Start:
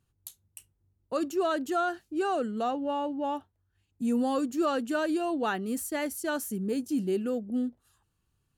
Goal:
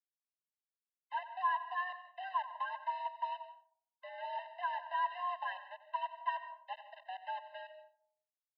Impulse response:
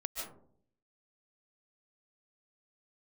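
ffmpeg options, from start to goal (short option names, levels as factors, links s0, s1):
-filter_complex "[0:a]aeval=exprs='val(0)+0.5*0.0237*sgn(val(0))':c=same,agate=range=0.158:threshold=0.0447:ratio=16:detection=peak,alimiter=level_in=1.06:limit=0.0631:level=0:latency=1:release=129,volume=0.944,acompressor=threshold=0.00251:ratio=2,asplit=3[s0][s1][s2];[s0]bandpass=f=730:t=q:w=8,volume=1[s3];[s1]bandpass=f=1090:t=q:w=8,volume=0.501[s4];[s2]bandpass=f=2440:t=q:w=8,volume=0.355[s5];[s3][s4][s5]amix=inputs=3:normalize=0,aresample=11025,aeval=exprs='val(0)*gte(abs(val(0)),0.00119)':c=same,aresample=44100,highpass=f=180:t=q:w=0.5412,highpass=f=180:t=q:w=1.307,lowpass=f=3000:t=q:w=0.5176,lowpass=f=3000:t=q:w=0.7071,lowpass=f=3000:t=q:w=1.932,afreqshift=370,aecho=1:1:91:0.178,asplit=2[s6][s7];[1:a]atrim=start_sample=2205[s8];[s7][s8]afir=irnorm=-1:irlink=0,volume=0.376[s9];[s6][s9]amix=inputs=2:normalize=0,afftfilt=real='re*eq(mod(floor(b*sr/1024/520),2),1)':imag='im*eq(mod(floor(b*sr/1024/520),2),1)':win_size=1024:overlap=0.75,volume=7.94"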